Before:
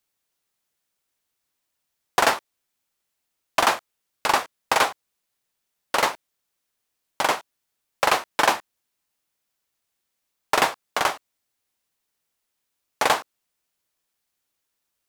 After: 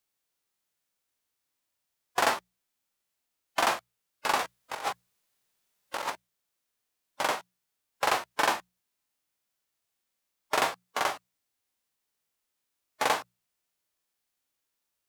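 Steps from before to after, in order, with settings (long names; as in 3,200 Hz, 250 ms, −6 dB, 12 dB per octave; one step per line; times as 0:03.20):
harmonic and percussive parts rebalanced percussive −11 dB
mains-hum notches 60/120/180 Hz
0:04.39–0:06.10: compressor whose output falls as the input rises −31 dBFS, ratio −0.5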